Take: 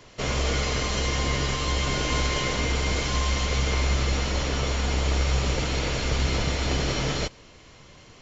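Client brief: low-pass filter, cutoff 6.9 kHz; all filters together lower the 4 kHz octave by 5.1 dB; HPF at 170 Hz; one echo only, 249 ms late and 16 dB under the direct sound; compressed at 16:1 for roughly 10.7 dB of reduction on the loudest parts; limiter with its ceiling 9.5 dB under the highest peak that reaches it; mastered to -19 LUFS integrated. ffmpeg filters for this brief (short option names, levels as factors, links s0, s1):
-af "highpass=170,lowpass=6900,equalizer=f=4000:t=o:g=-6.5,acompressor=threshold=0.0158:ratio=16,alimiter=level_in=3.76:limit=0.0631:level=0:latency=1,volume=0.266,aecho=1:1:249:0.158,volume=18.8"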